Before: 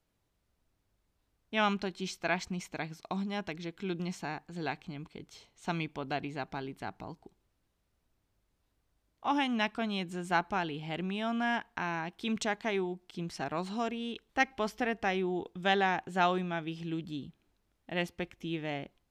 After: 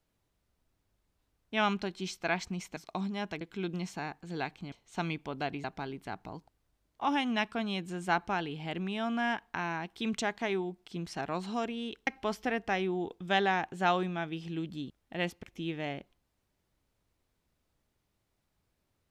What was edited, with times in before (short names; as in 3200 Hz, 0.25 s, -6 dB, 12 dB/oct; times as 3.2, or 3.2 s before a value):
shrink pauses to 35%